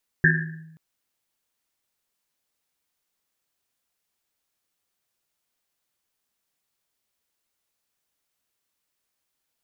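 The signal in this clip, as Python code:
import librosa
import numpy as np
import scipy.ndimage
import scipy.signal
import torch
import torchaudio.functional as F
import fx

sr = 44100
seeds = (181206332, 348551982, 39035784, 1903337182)

y = fx.risset_drum(sr, seeds[0], length_s=0.53, hz=160.0, decay_s=1.07, noise_hz=1700.0, noise_width_hz=230.0, noise_pct=50)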